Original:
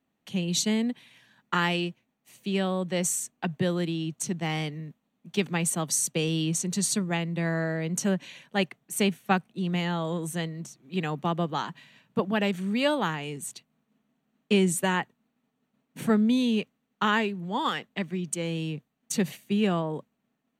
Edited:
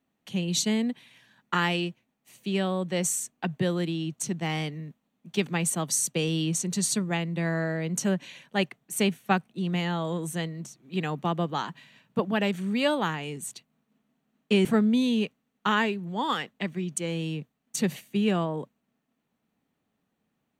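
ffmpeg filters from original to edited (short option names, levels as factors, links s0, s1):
-filter_complex "[0:a]asplit=2[s0][s1];[s0]atrim=end=14.652[s2];[s1]atrim=start=16.008[s3];[s2][s3]acrossfade=d=0.004:c1=hsin:c2=hsin"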